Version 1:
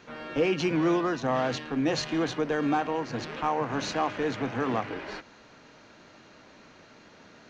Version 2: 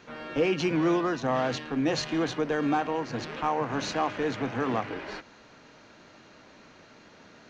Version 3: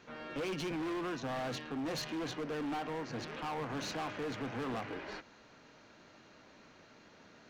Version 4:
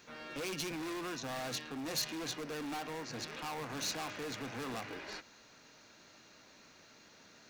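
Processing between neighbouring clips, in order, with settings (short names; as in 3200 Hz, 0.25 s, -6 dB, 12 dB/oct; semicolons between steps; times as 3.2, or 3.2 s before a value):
nothing audible
hard clip -29 dBFS, distortion -7 dB; gain -6 dB
pre-emphasis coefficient 0.8; notch 3100 Hz, Q 17; gain +10 dB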